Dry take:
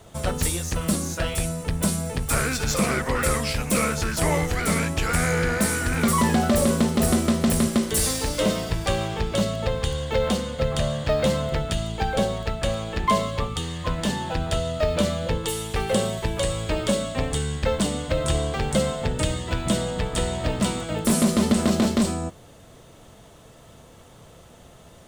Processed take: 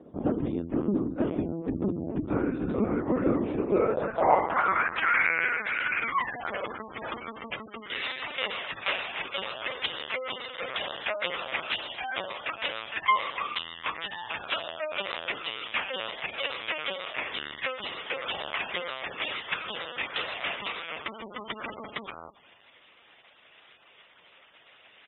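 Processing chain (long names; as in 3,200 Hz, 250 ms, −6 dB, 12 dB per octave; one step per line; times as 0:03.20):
slap from a distant wall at 51 metres, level −21 dB
linear-prediction vocoder at 8 kHz pitch kept
gate on every frequency bin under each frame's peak −30 dB strong
dynamic equaliser 1,100 Hz, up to +4 dB, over −44 dBFS, Q 1.8
band-pass filter sweep 290 Hz → 2,400 Hz, 0:03.46–0:05.31
level +6.5 dB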